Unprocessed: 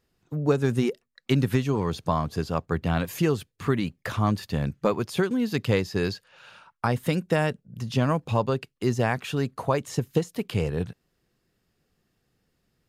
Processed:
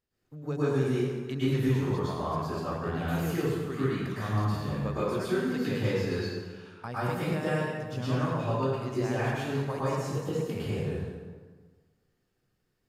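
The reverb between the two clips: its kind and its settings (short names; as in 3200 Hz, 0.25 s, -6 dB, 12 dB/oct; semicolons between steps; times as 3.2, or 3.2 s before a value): plate-style reverb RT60 1.5 s, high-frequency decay 0.65×, pre-delay 95 ms, DRR -10 dB; gain -14.5 dB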